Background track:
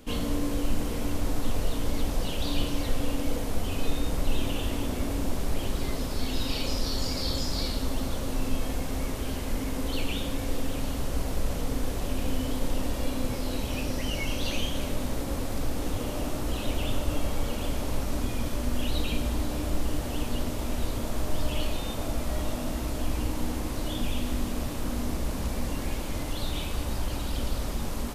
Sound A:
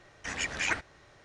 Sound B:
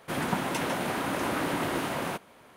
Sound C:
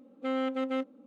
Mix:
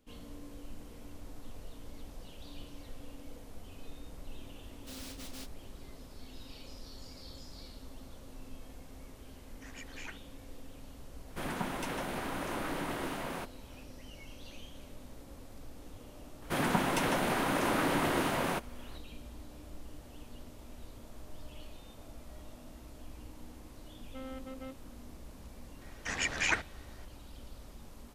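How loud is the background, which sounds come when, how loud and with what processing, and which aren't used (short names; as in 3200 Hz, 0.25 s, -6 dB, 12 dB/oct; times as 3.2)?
background track -19.5 dB
4.63 add C -17 dB + noise-modulated delay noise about 3900 Hz, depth 0.47 ms
9.37 add A -17 dB
11.28 add B -7.5 dB
16.42 add B -0.5 dB
23.9 add C -14.5 dB
25.81 add A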